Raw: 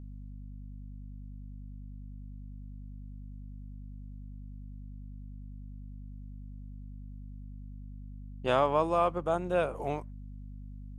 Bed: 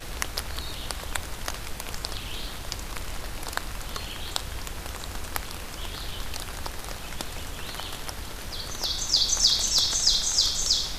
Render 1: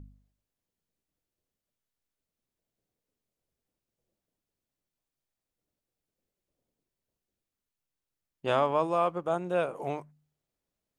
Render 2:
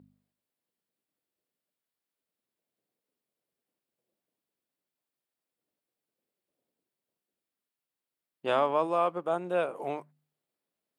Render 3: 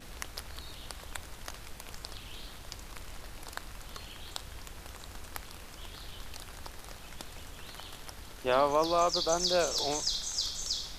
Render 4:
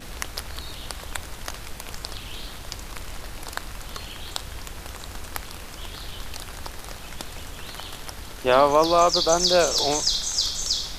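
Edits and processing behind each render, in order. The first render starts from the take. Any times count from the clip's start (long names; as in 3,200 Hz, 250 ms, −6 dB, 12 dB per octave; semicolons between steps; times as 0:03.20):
hum removal 50 Hz, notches 5
high-pass filter 210 Hz 12 dB per octave; parametric band 6,300 Hz −8 dB 0.42 octaves
mix in bed −10.5 dB
level +9 dB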